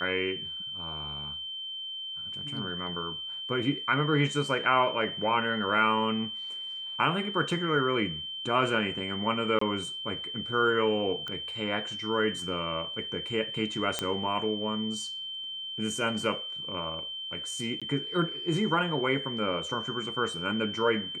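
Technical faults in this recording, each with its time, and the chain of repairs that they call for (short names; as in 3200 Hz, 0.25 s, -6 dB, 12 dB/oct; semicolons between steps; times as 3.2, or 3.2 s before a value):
tone 3100 Hz -35 dBFS
9.59–9.61 gap 24 ms
11.28 pop -23 dBFS
13.99 pop -12 dBFS
17.8–17.82 gap 16 ms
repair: de-click; notch 3100 Hz, Q 30; interpolate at 9.59, 24 ms; interpolate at 17.8, 16 ms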